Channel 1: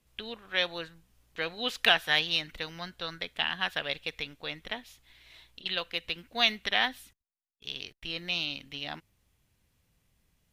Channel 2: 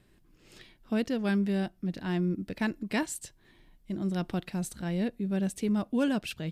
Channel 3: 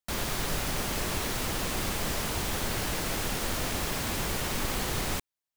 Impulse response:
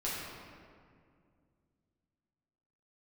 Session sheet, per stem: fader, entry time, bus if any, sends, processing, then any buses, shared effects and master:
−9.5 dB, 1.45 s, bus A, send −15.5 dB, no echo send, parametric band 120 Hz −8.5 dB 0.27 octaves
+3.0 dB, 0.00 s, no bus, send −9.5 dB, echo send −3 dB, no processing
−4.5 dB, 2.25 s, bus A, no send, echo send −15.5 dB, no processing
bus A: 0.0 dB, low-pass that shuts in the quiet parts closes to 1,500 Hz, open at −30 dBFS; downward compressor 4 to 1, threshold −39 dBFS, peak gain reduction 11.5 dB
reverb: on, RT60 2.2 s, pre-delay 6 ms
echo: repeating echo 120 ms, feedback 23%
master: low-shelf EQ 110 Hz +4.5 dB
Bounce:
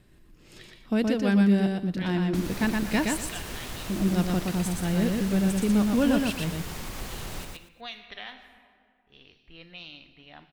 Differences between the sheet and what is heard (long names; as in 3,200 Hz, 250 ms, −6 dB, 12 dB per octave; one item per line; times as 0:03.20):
stem 2: send off
stem 3 −4.5 dB → +3.0 dB